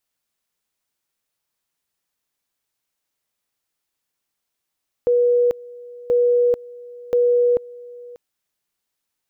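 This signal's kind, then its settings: two-level tone 485 Hz -13 dBFS, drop 22 dB, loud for 0.44 s, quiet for 0.59 s, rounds 3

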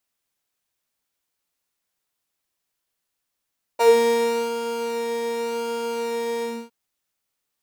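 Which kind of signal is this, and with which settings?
synth patch with pulse-width modulation A#4, detune 25 cents, oscillator 2 level -16 dB, sub -9.5 dB, filter highpass, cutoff 180 Hz, Q 4.5, filter envelope 2 oct, filter decay 0.17 s, filter sustain 40%, attack 21 ms, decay 0.72 s, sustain -9.5 dB, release 0.28 s, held 2.63 s, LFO 0.89 Hz, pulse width 28%, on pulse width 4%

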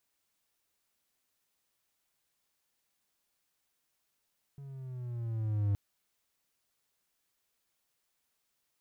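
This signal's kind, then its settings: gliding synth tone triangle, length 1.17 s, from 141 Hz, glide -6 st, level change +18.5 dB, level -23.5 dB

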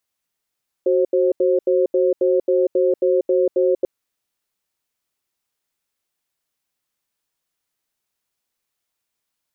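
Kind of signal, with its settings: cadence 371 Hz, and 532 Hz, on 0.19 s, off 0.08 s, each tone -16.5 dBFS 2.99 s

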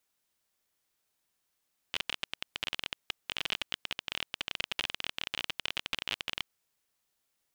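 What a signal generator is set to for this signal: random clicks 27 per s -15 dBFS 4.48 s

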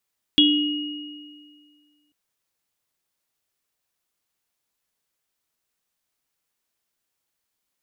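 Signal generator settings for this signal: sine partials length 1.74 s, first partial 296 Hz, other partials 2.88/3.33 kHz, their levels -2/3.5 dB, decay 1.94 s, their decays 1.89/0.40 s, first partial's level -15 dB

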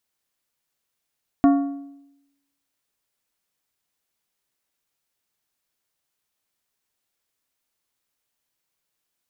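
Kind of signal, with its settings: metal hit plate, lowest mode 280 Hz, decay 0.90 s, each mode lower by 8 dB, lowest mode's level -10 dB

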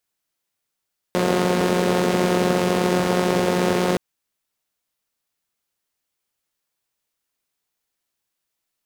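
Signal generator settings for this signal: four-cylinder engine model, steady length 2.82 s, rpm 5400, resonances 220/400 Hz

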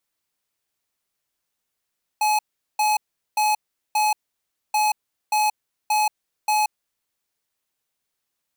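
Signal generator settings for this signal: beep pattern square 849 Hz, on 0.18 s, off 0.40 s, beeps 4, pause 0.61 s, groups 2, -19.5 dBFS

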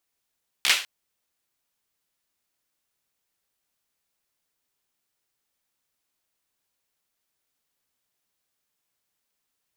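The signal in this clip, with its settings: hand clap length 0.20 s, apart 15 ms, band 2.7 kHz, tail 0.38 s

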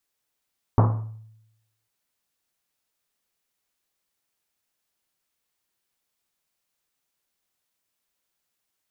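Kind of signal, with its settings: Risset drum, pitch 110 Hz, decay 0.91 s, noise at 670 Hz, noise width 970 Hz, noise 25%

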